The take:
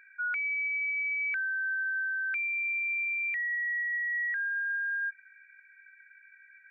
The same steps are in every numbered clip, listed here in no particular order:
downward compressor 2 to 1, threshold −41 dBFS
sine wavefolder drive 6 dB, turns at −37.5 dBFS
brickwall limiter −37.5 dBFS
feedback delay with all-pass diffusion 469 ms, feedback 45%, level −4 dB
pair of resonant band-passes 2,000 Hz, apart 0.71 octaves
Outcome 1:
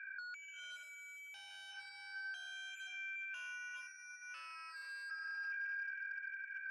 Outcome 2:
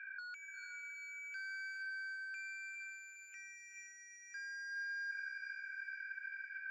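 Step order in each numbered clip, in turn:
downward compressor, then brickwall limiter, then feedback delay with all-pass diffusion, then sine wavefolder, then pair of resonant band-passes
brickwall limiter, then sine wavefolder, then pair of resonant band-passes, then downward compressor, then feedback delay with all-pass diffusion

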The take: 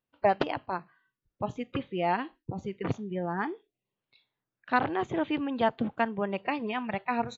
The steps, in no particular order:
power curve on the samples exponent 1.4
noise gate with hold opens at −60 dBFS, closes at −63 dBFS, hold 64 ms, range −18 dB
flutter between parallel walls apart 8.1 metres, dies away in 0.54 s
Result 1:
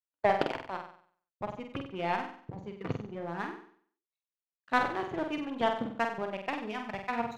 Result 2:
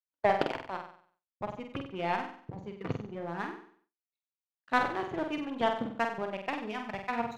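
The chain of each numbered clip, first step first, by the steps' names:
power curve on the samples, then noise gate with hold, then flutter between parallel walls
power curve on the samples, then flutter between parallel walls, then noise gate with hold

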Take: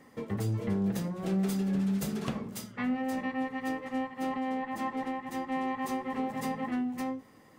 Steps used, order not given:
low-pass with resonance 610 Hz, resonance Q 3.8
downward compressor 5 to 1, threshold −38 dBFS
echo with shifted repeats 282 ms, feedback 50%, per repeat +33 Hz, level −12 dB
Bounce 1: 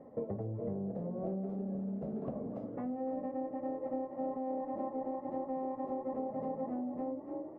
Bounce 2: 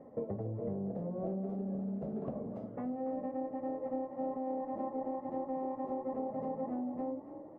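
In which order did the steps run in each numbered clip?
echo with shifted repeats, then downward compressor, then low-pass with resonance
downward compressor, then low-pass with resonance, then echo with shifted repeats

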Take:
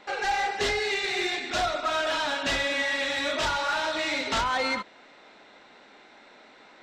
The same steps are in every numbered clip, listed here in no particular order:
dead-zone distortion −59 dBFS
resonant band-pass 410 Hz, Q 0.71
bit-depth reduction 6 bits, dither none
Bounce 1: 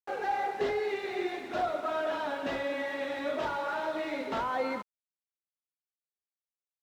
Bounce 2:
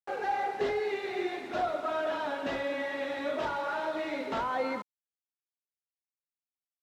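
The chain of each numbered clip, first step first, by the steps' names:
bit-depth reduction, then resonant band-pass, then dead-zone distortion
dead-zone distortion, then bit-depth reduction, then resonant band-pass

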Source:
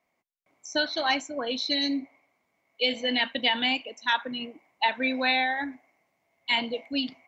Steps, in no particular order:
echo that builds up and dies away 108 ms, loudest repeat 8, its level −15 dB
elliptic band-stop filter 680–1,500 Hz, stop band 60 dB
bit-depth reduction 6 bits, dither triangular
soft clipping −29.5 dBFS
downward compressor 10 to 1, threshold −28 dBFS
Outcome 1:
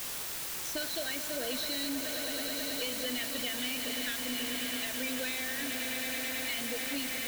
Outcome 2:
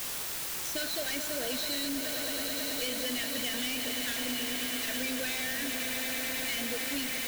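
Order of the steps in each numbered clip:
echo that builds up and dies away, then downward compressor, then elliptic band-stop filter, then bit-depth reduction, then soft clipping
echo that builds up and dies away, then soft clipping, then elliptic band-stop filter, then bit-depth reduction, then downward compressor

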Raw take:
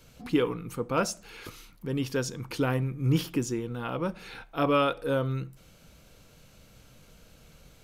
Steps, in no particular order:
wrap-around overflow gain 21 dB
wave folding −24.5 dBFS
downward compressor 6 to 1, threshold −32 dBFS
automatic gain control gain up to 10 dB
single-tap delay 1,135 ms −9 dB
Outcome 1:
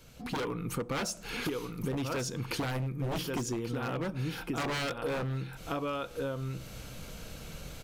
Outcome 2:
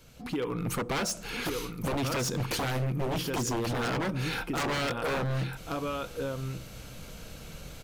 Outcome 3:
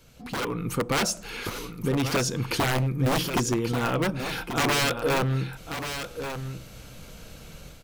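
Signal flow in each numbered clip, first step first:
single-tap delay, then wave folding, then wrap-around overflow, then automatic gain control, then downward compressor
downward compressor, then single-tap delay, then automatic gain control, then wave folding, then wrap-around overflow
wrap-around overflow, then wave folding, then downward compressor, then automatic gain control, then single-tap delay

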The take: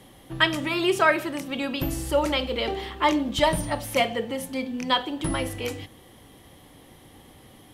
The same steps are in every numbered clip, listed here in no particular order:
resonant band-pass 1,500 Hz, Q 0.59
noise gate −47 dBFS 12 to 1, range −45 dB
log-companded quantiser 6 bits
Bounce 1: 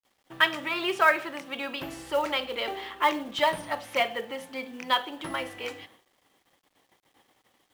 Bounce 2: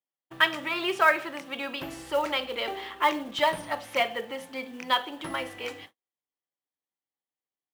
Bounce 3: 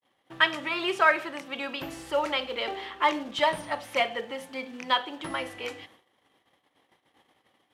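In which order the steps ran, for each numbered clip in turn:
noise gate, then resonant band-pass, then log-companded quantiser
resonant band-pass, then log-companded quantiser, then noise gate
log-companded quantiser, then noise gate, then resonant band-pass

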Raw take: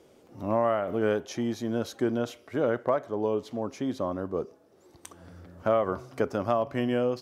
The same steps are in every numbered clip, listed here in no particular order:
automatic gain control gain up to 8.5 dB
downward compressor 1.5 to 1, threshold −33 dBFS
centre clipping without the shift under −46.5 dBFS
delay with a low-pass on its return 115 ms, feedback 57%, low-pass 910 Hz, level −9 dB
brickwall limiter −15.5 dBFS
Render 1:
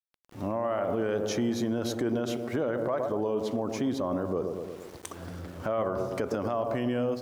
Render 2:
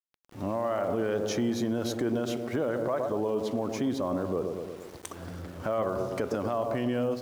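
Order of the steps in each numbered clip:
delay with a low-pass on its return, then automatic gain control, then centre clipping without the shift, then brickwall limiter, then downward compressor
delay with a low-pass on its return, then automatic gain control, then brickwall limiter, then downward compressor, then centre clipping without the shift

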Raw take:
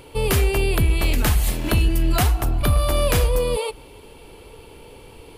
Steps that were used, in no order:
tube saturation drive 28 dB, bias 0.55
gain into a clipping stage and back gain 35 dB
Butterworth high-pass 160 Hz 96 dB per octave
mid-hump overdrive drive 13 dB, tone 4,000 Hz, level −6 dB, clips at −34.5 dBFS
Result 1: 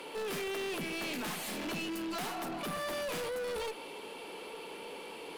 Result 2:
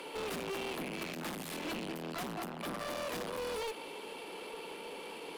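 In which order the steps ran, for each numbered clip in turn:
Butterworth high-pass, then tube saturation, then mid-hump overdrive, then gain into a clipping stage and back
tube saturation, then Butterworth high-pass, then mid-hump overdrive, then gain into a clipping stage and back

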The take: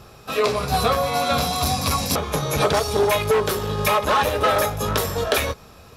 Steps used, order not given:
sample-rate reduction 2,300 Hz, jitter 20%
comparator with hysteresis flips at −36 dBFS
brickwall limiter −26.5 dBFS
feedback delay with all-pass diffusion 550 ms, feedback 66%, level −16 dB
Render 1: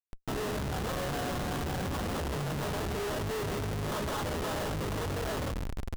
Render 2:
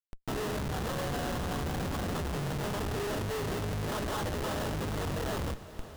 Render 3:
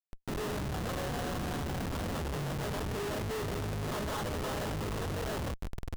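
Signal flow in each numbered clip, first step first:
sample-rate reduction, then brickwall limiter, then feedback delay with all-pass diffusion, then comparator with hysteresis
sample-rate reduction, then brickwall limiter, then comparator with hysteresis, then feedback delay with all-pass diffusion
brickwall limiter, then sample-rate reduction, then feedback delay with all-pass diffusion, then comparator with hysteresis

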